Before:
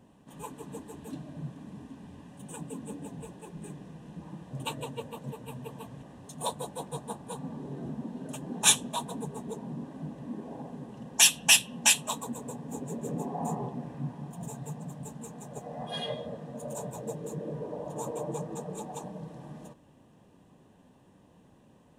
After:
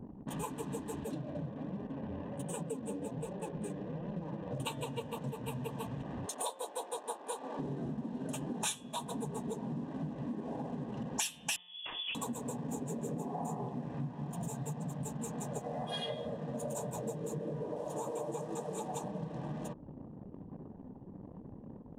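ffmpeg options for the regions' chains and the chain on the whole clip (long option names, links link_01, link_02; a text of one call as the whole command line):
ffmpeg -i in.wav -filter_complex "[0:a]asettb=1/sr,asplit=3[link_01][link_02][link_03];[link_01]atrim=end=1.044[link_04];[link_02]atrim=start=1.04:end=4.6,asetpts=PTS-STARTPTS,afade=type=in:duration=0.004:curve=qsin,afade=type=out:start_time=3.556:duration=0.004:curve=qsin,equalizer=frequency=530:width_type=o:width=0.54:gain=10,flanger=delay=5:depth=5.4:regen=39:speed=1.3:shape=sinusoidal[link_05];[link_03]atrim=start=4.596[link_06];[link_04][link_05]acrossfade=duration=0.004:curve1=hsin:curve2=qsin[link_07];[link_07][link_06]acrossfade=duration=0.004:curve1=qsin:curve2=hsin,asettb=1/sr,asplit=3[link_08][link_09][link_10];[link_08]atrim=end=6.264[link_11];[link_09]atrim=start=6.26:end=7.59,asetpts=PTS-STARTPTS,afade=type=in:duration=0.004:curve=qsin,afade=type=out:start_time=1.326:duration=0.004:curve=qsin,highpass=frequency=380:width=0.5412,highpass=frequency=380:width=1.3066,acompressor=mode=upward:threshold=-57dB:ratio=2.5:attack=3.2:release=140:knee=2.83:detection=peak[link_12];[link_10]atrim=start=7.586[link_13];[link_11][link_12]acrossfade=duration=0.004:curve1=hsin:curve2=qsin[link_14];[link_14][link_13]acrossfade=duration=0.004:curve1=qsin:curve2=hsin,asettb=1/sr,asplit=3[link_15][link_16][link_17];[link_15]atrim=end=11.564[link_18];[link_16]atrim=start=11.56:end=12.15,asetpts=PTS-STARTPTS,afade=type=in:duration=0.004:curve=qsin,afade=type=out:start_time=0.586:duration=0.004:curve=qsin,equalizer=frequency=2800:width=0.45:gain=-14.5,volume=32.5dB,asoftclip=hard,volume=-32.5dB,lowpass=frequency=3100:width_type=q:width=0.5098,lowpass=frequency=3100:width_type=q:width=0.6013,lowpass=frequency=3100:width_type=q:width=0.9,lowpass=frequency=3100:width_type=q:width=2.563,afreqshift=-3600[link_19];[link_17]atrim=start=12.146[link_20];[link_18][link_19]acrossfade=duration=0.004:curve1=hsin:curve2=qsin[link_21];[link_21][link_20]acrossfade=duration=0.004:curve1=qsin:curve2=hsin,asettb=1/sr,asplit=3[link_22][link_23][link_24];[link_22]atrim=end=17.764[link_25];[link_23]atrim=start=17.76:end=18.88,asetpts=PTS-STARTPTS,afade=type=in:duration=0.004:curve=qsin,afade=type=out:start_time=1.116:duration=0.004:curve=qsin,acrossover=split=3400[link_26][link_27];[link_27]acompressor=threshold=-54dB:ratio=4:attack=1:release=60[link_28];[link_26][link_28]amix=inputs=2:normalize=0,bass=frequency=250:gain=-6,treble=frequency=4000:gain=7[link_29];[link_24]atrim=start=18.876[link_30];[link_25][link_29]acrossfade=duration=0.004:curve1=hsin:curve2=qsin[link_31];[link_31][link_30]acrossfade=duration=0.004:curve1=qsin:curve2=hsin,bandreject=frequency=178.2:width_type=h:width=4,bandreject=frequency=356.4:width_type=h:width=4,bandreject=frequency=534.6:width_type=h:width=4,bandreject=frequency=712.8:width_type=h:width=4,bandreject=frequency=891:width_type=h:width=4,bandreject=frequency=1069.2:width_type=h:width=4,bandreject=frequency=1247.4:width_type=h:width=4,bandreject=frequency=1425.6:width_type=h:width=4,bandreject=frequency=1603.8:width_type=h:width=4,bandreject=frequency=1782:width_type=h:width=4,bandreject=frequency=1960.2:width_type=h:width=4,bandreject=frequency=2138.4:width_type=h:width=4,bandreject=frequency=2316.6:width_type=h:width=4,bandreject=frequency=2494.8:width_type=h:width=4,bandreject=frequency=2673:width_type=h:width=4,bandreject=frequency=2851.2:width_type=h:width=4,bandreject=frequency=3029.4:width_type=h:width=4,bandreject=frequency=3207.6:width_type=h:width=4,bandreject=frequency=3385.8:width_type=h:width=4,bandreject=frequency=3564:width_type=h:width=4,anlmdn=0.000251,acompressor=threshold=-50dB:ratio=6,volume=13dB" out.wav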